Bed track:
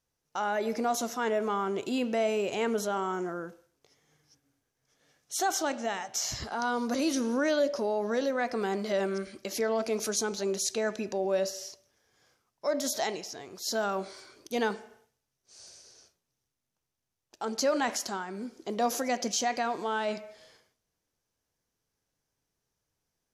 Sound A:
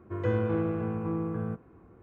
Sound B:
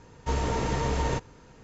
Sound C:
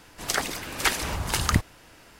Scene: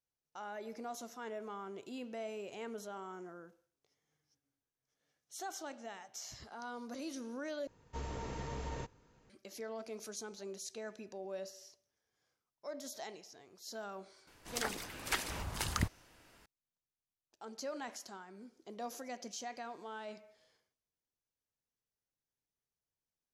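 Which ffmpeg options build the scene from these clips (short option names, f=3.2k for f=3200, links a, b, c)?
-filter_complex "[0:a]volume=-15dB,asplit=2[a][b];[a]atrim=end=7.674[c];[2:a]atrim=end=1.63,asetpts=PTS-STARTPTS,volume=-14.5dB[d];[b]atrim=start=9.296[e];[3:a]atrim=end=2.19,asetpts=PTS-STARTPTS,volume=-11.5dB,afade=t=in:d=0.004:c=hsin,afade=t=out:st=2.186:d=0.004:c=hsin,adelay=14270[f];[c][d]acrossfade=d=0.004:c1=hsin:c2=hsin[g];[g][e]acrossfade=d=0.004:c1=hsin:c2=hsin[h];[h][f]amix=inputs=2:normalize=0"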